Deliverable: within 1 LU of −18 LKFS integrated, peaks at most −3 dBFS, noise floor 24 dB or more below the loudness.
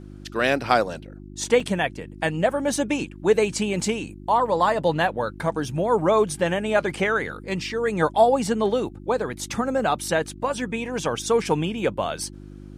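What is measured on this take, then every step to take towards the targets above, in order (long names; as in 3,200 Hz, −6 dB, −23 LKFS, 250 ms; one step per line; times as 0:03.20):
number of dropouts 2; longest dropout 4.3 ms; mains hum 50 Hz; hum harmonics up to 350 Hz; level of the hum −39 dBFS; integrated loudness −23.5 LKFS; sample peak −4.0 dBFS; target loudness −18.0 LKFS
→ repair the gap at 0:01.60/0:09.33, 4.3 ms
hum removal 50 Hz, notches 7
level +5.5 dB
brickwall limiter −3 dBFS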